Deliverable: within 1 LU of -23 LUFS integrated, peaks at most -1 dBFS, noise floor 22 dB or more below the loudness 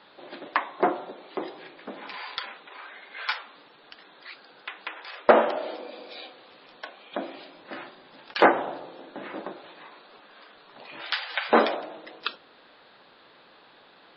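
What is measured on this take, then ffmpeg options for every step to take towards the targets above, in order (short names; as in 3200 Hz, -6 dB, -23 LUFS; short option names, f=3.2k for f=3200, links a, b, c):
loudness -27.5 LUFS; peak -3.5 dBFS; loudness target -23.0 LUFS
-> -af "volume=4.5dB,alimiter=limit=-1dB:level=0:latency=1"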